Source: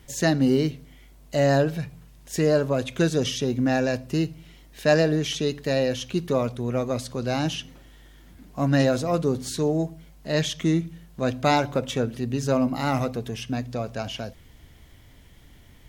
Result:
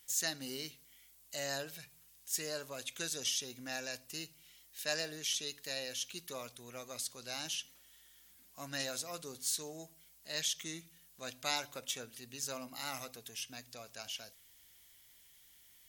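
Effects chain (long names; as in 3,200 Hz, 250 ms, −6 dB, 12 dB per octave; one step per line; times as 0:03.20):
first-order pre-emphasis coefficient 0.97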